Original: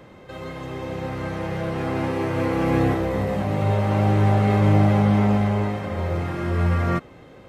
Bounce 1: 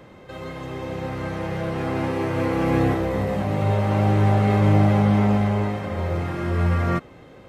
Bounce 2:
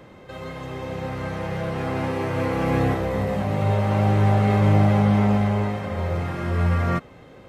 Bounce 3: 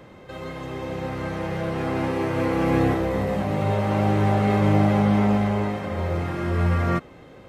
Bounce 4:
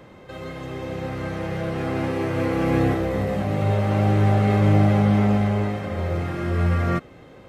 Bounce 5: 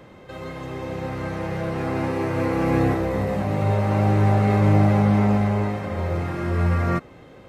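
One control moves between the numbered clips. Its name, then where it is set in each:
dynamic equaliser, frequency: 9,600, 330, 110, 950, 3,200 Hertz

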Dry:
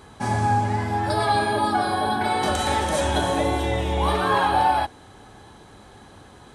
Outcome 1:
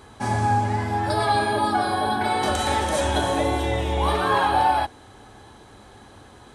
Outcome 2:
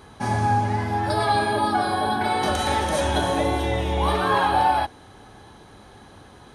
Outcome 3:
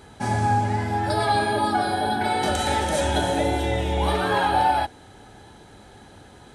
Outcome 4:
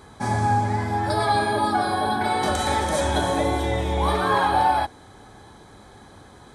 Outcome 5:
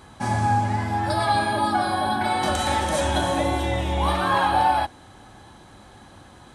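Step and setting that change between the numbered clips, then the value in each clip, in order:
notch filter, centre frequency: 170, 7,700, 1,100, 2,800, 430 Hertz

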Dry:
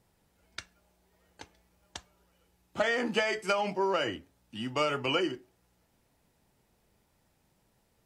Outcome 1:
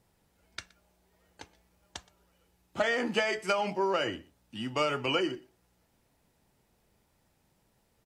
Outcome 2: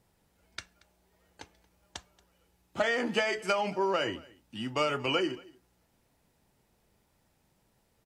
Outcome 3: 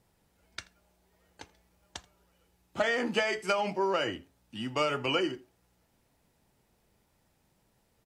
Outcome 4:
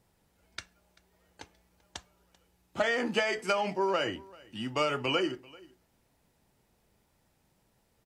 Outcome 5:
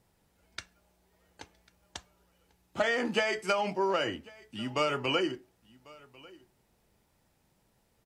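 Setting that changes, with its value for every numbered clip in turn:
single-tap delay, delay time: 121, 230, 82, 389, 1,095 milliseconds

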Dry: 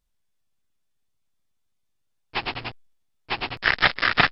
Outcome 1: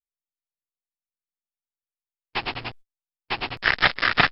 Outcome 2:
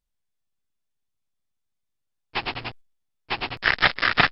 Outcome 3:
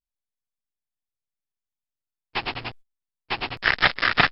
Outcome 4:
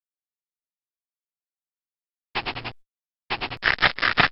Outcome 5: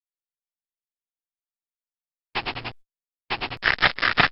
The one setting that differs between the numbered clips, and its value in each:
noise gate, range: −31, −6, −18, −59, −46 decibels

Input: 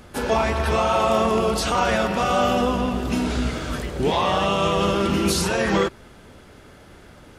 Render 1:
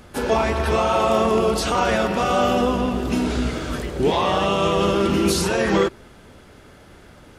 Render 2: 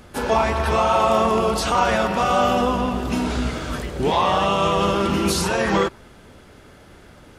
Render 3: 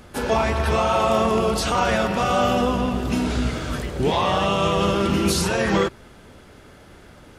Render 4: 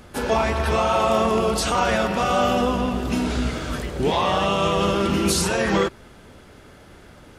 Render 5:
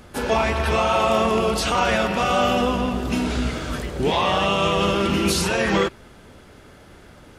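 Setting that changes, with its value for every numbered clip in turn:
dynamic equaliser, frequency: 360, 960, 110, 8,200, 2,600 Hertz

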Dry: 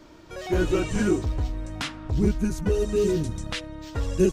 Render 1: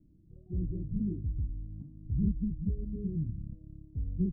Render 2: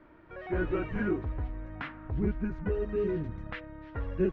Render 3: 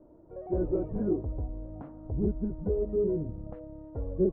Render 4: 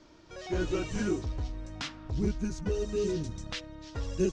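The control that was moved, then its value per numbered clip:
transistor ladder low-pass, frequency: 220, 2,300, 760, 7,200 Hertz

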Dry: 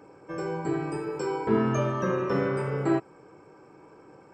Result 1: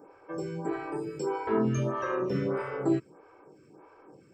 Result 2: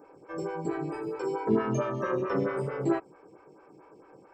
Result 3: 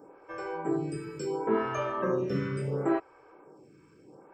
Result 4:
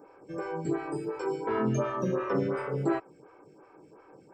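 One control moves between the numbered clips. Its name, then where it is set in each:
phaser with staggered stages, speed: 1.6, 4.5, 0.72, 2.8 Hertz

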